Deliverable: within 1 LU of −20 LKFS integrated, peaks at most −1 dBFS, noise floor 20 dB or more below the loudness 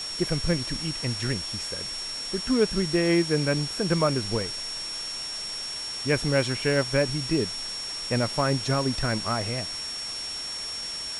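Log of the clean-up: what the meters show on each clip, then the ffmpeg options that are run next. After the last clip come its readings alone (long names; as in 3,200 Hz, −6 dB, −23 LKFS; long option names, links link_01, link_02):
interfering tone 5,500 Hz; level of the tone −32 dBFS; background noise floor −34 dBFS; target noise floor −47 dBFS; integrated loudness −26.5 LKFS; sample peak −9.5 dBFS; target loudness −20.0 LKFS
→ -af "bandreject=frequency=5500:width=30"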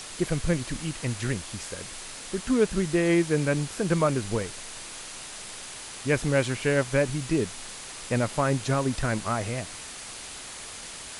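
interfering tone none found; background noise floor −41 dBFS; target noise floor −48 dBFS
→ -af "afftdn=noise_reduction=7:noise_floor=-41"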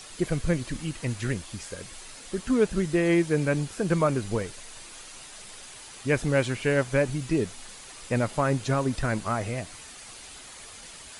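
background noise floor −45 dBFS; target noise floor −47 dBFS
→ -af "afftdn=noise_reduction=6:noise_floor=-45"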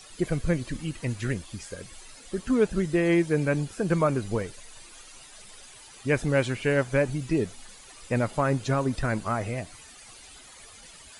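background noise floor −49 dBFS; integrated loudness −27.0 LKFS; sample peak −10.0 dBFS; target loudness −20.0 LKFS
→ -af "volume=7dB"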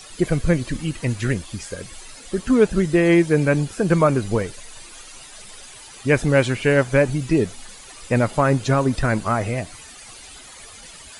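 integrated loudness −20.0 LKFS; sample peak −3.0 dBFS; background noise floor −42 dBFS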